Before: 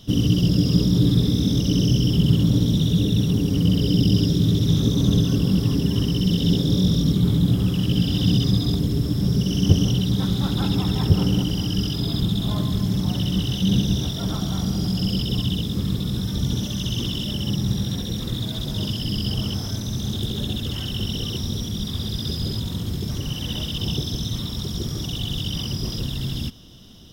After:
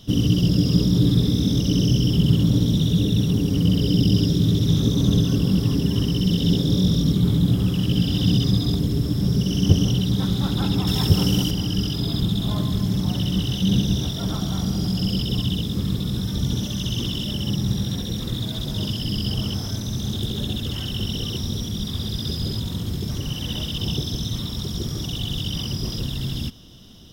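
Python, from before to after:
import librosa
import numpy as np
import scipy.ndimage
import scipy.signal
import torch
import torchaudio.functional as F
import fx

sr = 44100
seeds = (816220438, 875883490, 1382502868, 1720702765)

y = fx.high_shelf(x, sr, hz=3000.0, db=9.5, at=(10.87, 11.51))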